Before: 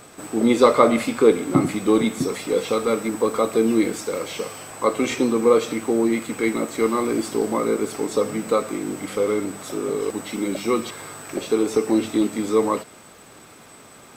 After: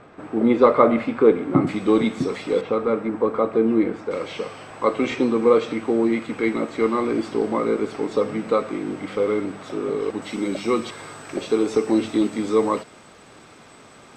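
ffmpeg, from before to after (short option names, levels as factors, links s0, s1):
-af "asetnsamples=n=441:p=0,asendcmd='1.67 lowpass f 4100;2.61 lowpass f 1700;4.11 lowpass f 3600;10.22 lowpass f 6000',lowpass=2000"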